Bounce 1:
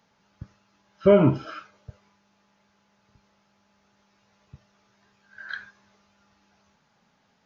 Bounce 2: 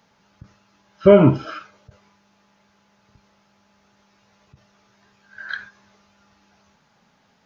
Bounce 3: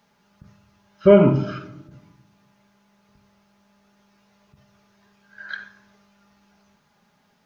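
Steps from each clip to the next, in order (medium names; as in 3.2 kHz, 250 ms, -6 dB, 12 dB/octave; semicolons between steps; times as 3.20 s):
endings held to a fixed fall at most 260 dB/s; trim +5.5 dB
simulated room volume 3300 m³, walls furnished, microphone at 1.3 m; bit crusher 12-bit; trim -4 dB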